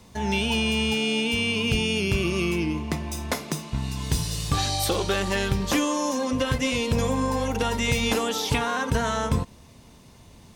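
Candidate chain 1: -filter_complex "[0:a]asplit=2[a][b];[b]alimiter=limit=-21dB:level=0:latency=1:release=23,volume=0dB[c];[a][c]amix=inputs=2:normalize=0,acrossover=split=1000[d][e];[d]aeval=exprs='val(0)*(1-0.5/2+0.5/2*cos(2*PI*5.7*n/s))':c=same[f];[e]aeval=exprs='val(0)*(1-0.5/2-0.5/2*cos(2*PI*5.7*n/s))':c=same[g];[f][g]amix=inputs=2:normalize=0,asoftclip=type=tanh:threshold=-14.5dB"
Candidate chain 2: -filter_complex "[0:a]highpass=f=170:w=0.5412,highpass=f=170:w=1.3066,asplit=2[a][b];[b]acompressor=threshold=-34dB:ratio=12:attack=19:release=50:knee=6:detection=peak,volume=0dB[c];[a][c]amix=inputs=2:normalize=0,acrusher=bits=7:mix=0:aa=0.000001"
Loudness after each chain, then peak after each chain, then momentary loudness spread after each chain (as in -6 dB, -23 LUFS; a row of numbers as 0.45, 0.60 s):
-24.5, -23.0 LUFS; -15.0, -8.0 dBFS; 6, 6 LU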